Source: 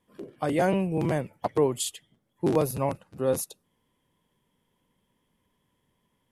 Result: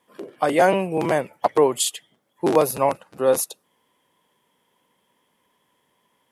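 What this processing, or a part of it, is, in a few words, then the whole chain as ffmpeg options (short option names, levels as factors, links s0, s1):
filter by subtraction: -filter_complex "[0:a]asplit=2[s0][s1];[s1]lowpass=770,volume=-1[s2];[s0][s2]amix=inputs=2:normalize=0,volume=2.51"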